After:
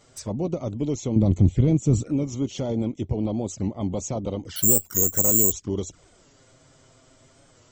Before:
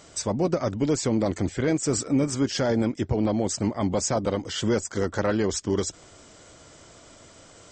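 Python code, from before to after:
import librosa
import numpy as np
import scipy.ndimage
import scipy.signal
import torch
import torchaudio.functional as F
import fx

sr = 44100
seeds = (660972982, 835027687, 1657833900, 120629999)

y = fx.low_shelf(x, sr, hz=240.0, db=6.0)
y = fx.env_flanger(y, sr, rest_ms=9.7, full_db=-21.0)
y = fx.bass_treble(y, sr, bass_db=13, treble_db=-1, at=(1.16, 2.04))
y = fx.resample_bad(y, sr, factor=6, down='filtered', up='zero_stuff', at=(4.56, 5.52))
y = fx.record_warp(y, sr, rpm=45.0, depth_cents=100.0)
y = F.gain(torch.from_numpy(y), -4.5).numpy()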